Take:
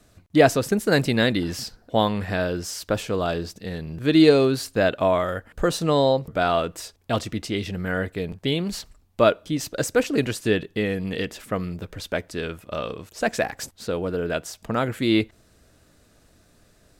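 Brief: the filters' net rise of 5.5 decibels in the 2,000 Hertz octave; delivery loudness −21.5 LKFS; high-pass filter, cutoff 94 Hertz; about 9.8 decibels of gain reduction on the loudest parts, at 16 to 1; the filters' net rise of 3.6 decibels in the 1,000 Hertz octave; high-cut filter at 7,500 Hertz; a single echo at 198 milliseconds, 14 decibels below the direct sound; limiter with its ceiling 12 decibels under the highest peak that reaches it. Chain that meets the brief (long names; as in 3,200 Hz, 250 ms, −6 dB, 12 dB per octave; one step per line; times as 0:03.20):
high-pass filter 94 Hz
low-pass filter 7,500 Hz
parametric band 1,000 Hz +3.5 dB
parametric band 2,000 Hz +6 dB
downward compressor 16 to 1, threshold −18 dBFS
brickwall limiter −18 dBFS
single-tap delay 198 ms −14 dB
level +9 dB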